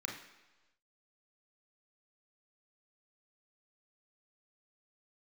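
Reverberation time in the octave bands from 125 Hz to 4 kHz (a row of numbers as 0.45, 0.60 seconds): 1.0, 1.0, 1.1, 1.1, 1.1, 1.2 seconds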